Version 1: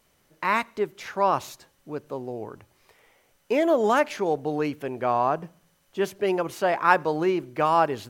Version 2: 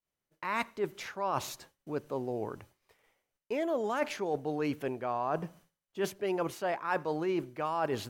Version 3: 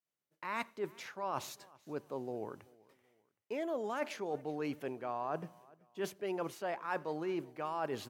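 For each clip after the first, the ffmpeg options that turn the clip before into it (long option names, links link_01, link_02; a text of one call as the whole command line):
ffmpeg -i in.wav -af "agate=range=-33dB:threshold=-50dB:ratio=3:detection=peak,areverse,acompressor=threshold=-29dB:ratio=6,areverse" out.wav
ffmpeg -i in.wav -af "highpass=120,aecho=1:1:384|768:0.0631|0.0233,volume=-5.5dB" out.wav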